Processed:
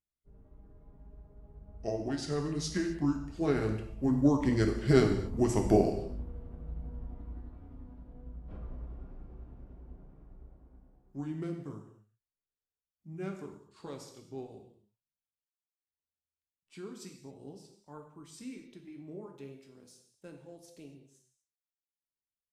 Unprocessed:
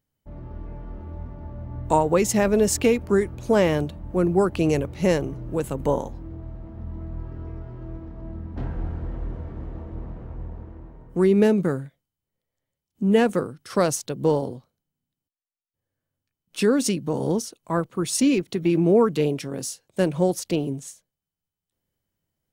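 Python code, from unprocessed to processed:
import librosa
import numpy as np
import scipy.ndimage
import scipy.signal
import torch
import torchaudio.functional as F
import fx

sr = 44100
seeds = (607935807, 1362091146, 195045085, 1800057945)

y = fx.pitch_glide(x, sr, semitones=-7.0, runs='ending unshifted')
y = fx.doppler_pass(y, sr, speed_mps=10, closest_m=6.6, pass_at_s=5.53)
y = fx.rev_gated(y, sr, seeds[0], gate_ms=290, shape='falling', drr_db=3.0)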